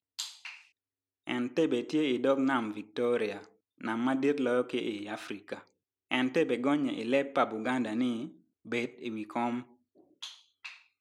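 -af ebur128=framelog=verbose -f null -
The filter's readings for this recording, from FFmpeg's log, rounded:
Integrated loudness:
  I:         -31.5 LUFS
  Threshold: -42.6 LUFS
Loudness range:
  LRA:         3.6 LU
  Threshold: -52.0 LUFS
  LRA low:   -34.3 LUFS
  LRA high:  -30.7 LUFS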